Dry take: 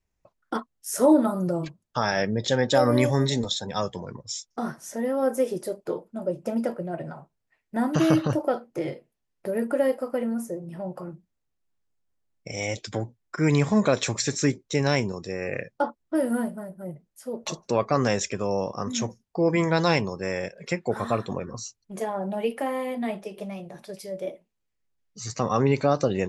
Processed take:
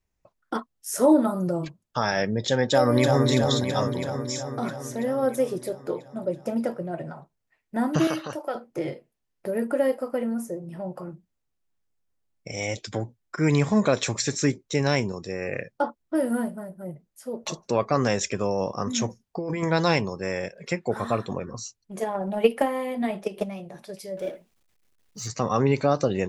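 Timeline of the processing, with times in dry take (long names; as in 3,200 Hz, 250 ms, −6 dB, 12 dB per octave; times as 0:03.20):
0:02.63–0:03.27: delay throw 330 ms, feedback 70%, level −4.5 dB
0:08.07–0:08.55: high-pass filter 970 Hz 6 dB per octave
0:18.23–0:19.63: compressor whose output falls as the input rises −26 dBFS
0:22.02–0:23.49: transient designer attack +11 dB, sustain +2 dB
0:24.17–0:25.28: mu-law and A-law mismatch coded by mu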